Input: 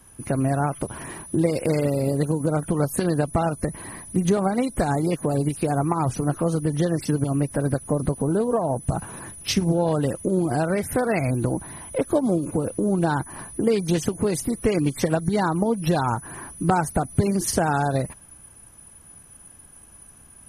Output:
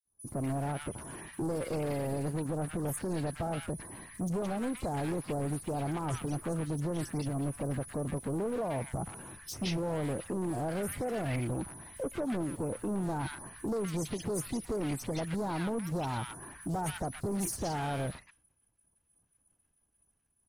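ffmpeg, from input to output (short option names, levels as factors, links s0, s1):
-filter_complex "[0:a]agate=range=0.0224:threshold=0.0178:ratio=3:detection=peak,asoftclip=type=hard:threshold=0.0708,acrossover=split=1300|5400[s0][s1][s2];[s0]adelay=50[s3];[s1]adelay=170[s4];[s3][s4][s2]amix=inputs=3:normalize=0,volume=0.447"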